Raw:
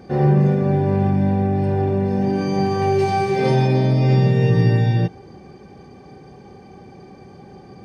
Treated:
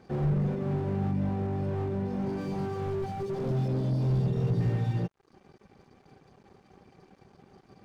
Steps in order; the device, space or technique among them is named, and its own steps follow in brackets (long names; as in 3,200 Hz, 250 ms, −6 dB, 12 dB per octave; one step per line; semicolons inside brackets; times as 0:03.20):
reverb reduction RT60 0.63 s
0:03.06–0:04.61: flat-topped bell 1,500 Hz −14 dB
early transistor amplifier (dead-zone distortion −48 dBFS; slew-rate limiting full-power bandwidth 31 Hz)
level −8.5 dB